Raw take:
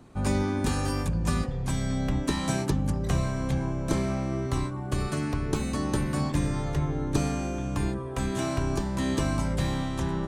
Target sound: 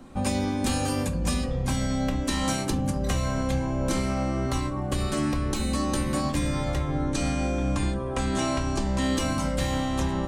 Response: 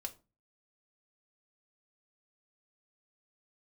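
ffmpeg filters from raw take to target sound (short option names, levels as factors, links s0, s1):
-filter_complex "[0:a]asettb=1/sr,asplit=3[s0][s1][s2];[s0]atrim=end=7.064[s3];[s1]atrim=start=7.06:end=9.02,asetpts=PTS-STARTPTS,afade=t=in:d=0.004:c=qsin,afade=t=out:st=1.956:d=0.004:c=qsin,lowpass=f=9900:w=0.5412,lowpass=f=9900:w=1.3066[s4];[s2]atrim=start=9.016[s5];[s3][s4]acrossfade=d=0.004:c1=hsin:c2=qsin[s6];[s6][s5]acrossfade=d=0.004:c1=qsin:c2=hsin[s7];[1:a]atrim=start_sample=2205[s8];[s7][s8]afir=irnorm=-1:irlink=0,acrossover=split=1900[s9][s10];[s9]alimiter=level_in=1.19:limit=0.0631:level=0:latency=1:release=200,volume=0.841[s11];[s11][s10]amix=inputs=2:normalize=0,volume=2.37"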